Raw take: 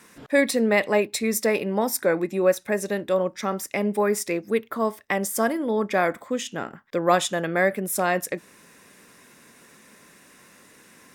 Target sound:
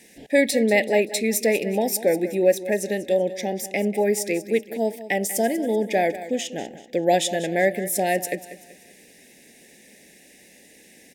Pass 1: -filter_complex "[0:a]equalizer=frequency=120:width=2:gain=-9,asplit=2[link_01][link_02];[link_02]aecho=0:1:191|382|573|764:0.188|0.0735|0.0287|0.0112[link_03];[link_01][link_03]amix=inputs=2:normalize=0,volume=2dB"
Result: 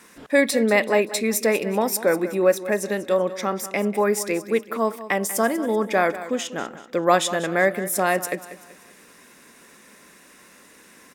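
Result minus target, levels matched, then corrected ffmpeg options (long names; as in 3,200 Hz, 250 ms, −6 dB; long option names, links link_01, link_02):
1,000 Hz band +2.5 dB
-filter_complex "[0:a]asuperstop=centerf=1200:order=8:qfactor=1.3,equalizer=frequency=120:width=2:gain=-9,asplit=2[link_01][link_02];[link_02]aecho=0:1:191|382|573|764:0.188|0.0735|0.0287|0.0112[link_03];[link_01][link_03]amix=inputs=2:normalize=0,volume=2dB"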